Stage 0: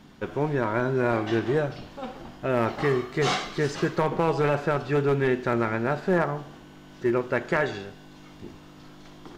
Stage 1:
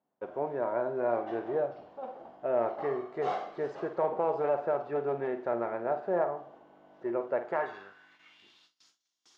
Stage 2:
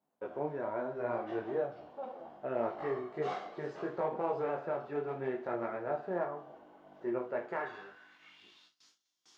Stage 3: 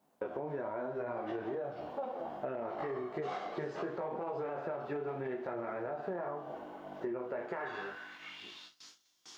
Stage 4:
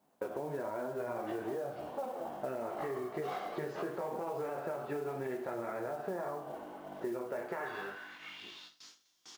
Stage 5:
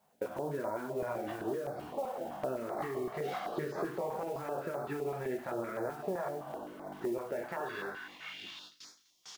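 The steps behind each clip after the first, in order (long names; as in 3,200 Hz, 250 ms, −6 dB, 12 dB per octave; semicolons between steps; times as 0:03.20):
flutter between parallel walls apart 8.7 metres, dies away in 0.27 s; band-pass filter sweep 650 Hz → 6,000 Hz, 0:07.45–0:08.88; noise gate with hold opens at −51 dBFS
dynamic equaliser 640 Hz, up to −6 dB, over −39 dBFS, Q 0.8; micro pitch shift up and down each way 25 cents; level +3.5 dB
brickwall limiter −30.5 dBFS, peak gain reduction 9.5 dB; downward compressor 6 to 1, threshold −46 dBFS, peak gain reduction 11 dB; level +10.5 dB
noise that follows the level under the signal 25 dB; single-tap delay 85 ms −17.5 dB
notch on a step sequencer 7.8 Hz 300–2,900 Hz; level +3.5 dB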